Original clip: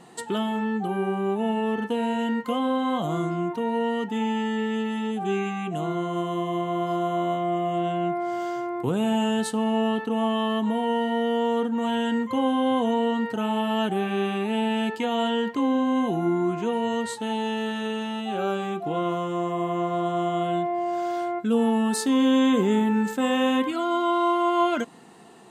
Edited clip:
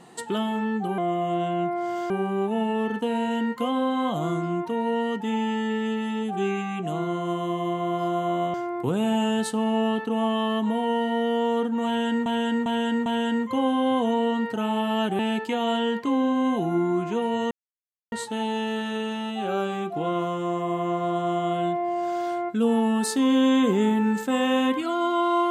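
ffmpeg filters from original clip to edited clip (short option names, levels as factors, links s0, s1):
-filter_complex "[0:a]asplit=9[s0][s1][s2][s3][s4][s5][s6][s7][s8];[s0]atrim=end=0.982[s9];[s1]atrim=start=7.418:end=8.542[s10];[s2]atrim=start=0.978:end=7.422[s11];[s3]atrim=start=8.538:end=12.262[s12];[s4]atrim=start=11.858:end=12.262[s13];[s5]atrim=start=11.858:end=12.262[s14];[s6]atrim=start=11.858:end=13.992[s15];[s7]atrim=start=14.698:end=17.02,asetpts=PTS-STARTPTS,afade=t=out:st=2.318:d=0.004:c=hsin,apad=pad_dur=0.61[s16];[s8]atrim=start=17.02,asetpts=PTS-STARTPTS,afade=t=in:d=0.004:c=hsin[s17];[s9][s10]acrossfade=d=0.004:c1=hsin:c2=hsin[s18];[s18][s11]acrossfade=d=0.004:c1=hsin:c2=hsin[s19];[s19][s12]acrossfade=d=0.004:c1=hsin:c2=hsin[s20];[s20][s13]acrossfade=d=0.004:c1=hsin:c2=hsin[s21];[s21][s14]acrossfade=d=0.004:c1=hsin:c2=hsin[s22];[s22][s15]acrossfade=d=0.004:c1=hsin:c2=hsin[s23];[s16][s17]concat=n=2:v=0:a=1[s24];[s23][s24]acrossfade=d=0.004:c1=hsin:c2=hsin"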